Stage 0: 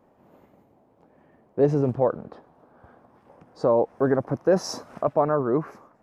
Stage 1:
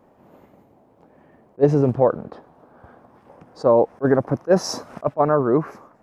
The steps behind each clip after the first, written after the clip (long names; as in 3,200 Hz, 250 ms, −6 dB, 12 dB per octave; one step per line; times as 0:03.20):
level that may rise only so fast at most 580 dB per second
level +5 dB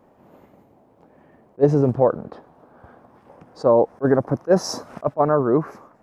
dynamic equaliser 2,600 Hz, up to −5 dB, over −43 dBFS, Q 1.4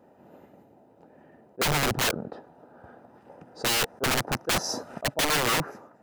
notch comb filter 1,100 Hz
wrap-around overflow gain 18 dB
level −1 dB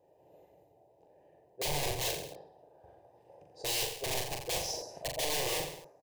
phaser with its sweep stopped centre 560 Hz, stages 4
on a send: reverse bouncing-ball delay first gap 40 ms, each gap 1.1×, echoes 5
on the sum: level −7.5 dB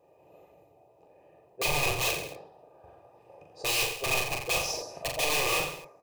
hollow resonant body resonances 1,200/2,500 Hz, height 18 dB, ringing for 40 ms
flanger 1.9 Hz, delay 4.2 ms, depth 9.7 ms, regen −76%
level +8 dB